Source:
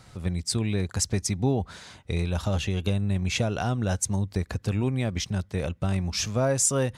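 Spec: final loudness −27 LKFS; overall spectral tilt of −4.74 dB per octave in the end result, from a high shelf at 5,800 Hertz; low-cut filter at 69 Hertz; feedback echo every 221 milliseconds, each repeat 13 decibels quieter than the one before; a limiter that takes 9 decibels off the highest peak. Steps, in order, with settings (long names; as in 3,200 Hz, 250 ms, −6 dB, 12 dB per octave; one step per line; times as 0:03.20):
high-pass filter 69 Hz
high-shelf EQ 5,800 Hz +3 dB
brickwall limiter −17.5 dBFS
repeating echo 221 ms, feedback 22%, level −13 dB
level +1.5 dB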